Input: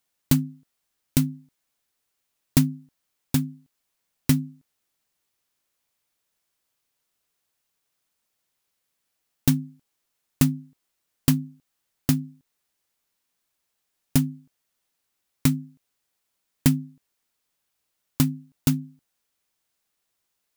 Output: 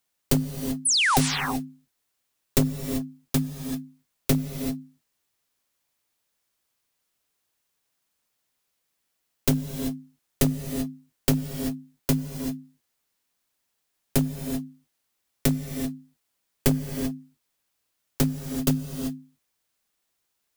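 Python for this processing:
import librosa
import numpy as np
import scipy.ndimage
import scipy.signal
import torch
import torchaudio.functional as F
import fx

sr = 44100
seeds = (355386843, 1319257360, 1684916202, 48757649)

y = np.minimum(x, 2.0 * 10.0 ** (-17.0 / 20.0) - x)
y = fx.spec_paint(y, sr, seeds[0], shape='fall', start_s=0.85, length_s=0.33, low_hz=680.0, high_hz=11000.0, level_db=-21.0)
y = fx.rev_gated(y, sr, seeds[1], gate_ms=410, shape='rising', drr_db=6.5)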